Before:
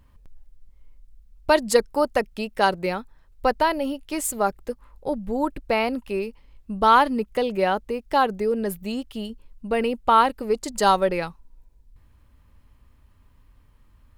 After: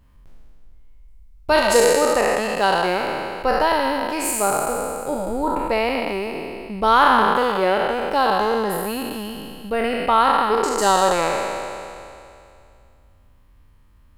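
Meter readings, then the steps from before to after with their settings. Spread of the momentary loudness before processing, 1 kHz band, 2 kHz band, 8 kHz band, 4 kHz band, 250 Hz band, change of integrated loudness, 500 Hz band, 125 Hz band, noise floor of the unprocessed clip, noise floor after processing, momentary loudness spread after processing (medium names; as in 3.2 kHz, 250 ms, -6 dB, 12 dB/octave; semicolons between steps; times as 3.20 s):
15 LU, +4.0 dB, +6.0 dB, +7.5 dB, +5.5 dB, +1.5 dB, +3.5 dB, +4.0 dB, +2.0 dB, -57 dBFS, -52 dBFS, 14 LU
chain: spectral sustain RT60 2.48 s; trim -1.5 dB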